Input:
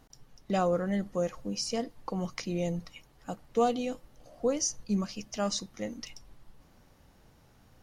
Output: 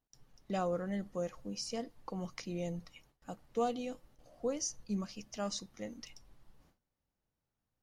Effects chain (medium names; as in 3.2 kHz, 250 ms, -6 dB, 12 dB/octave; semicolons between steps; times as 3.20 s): gate with hold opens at -47 dBFS; trim -7 dB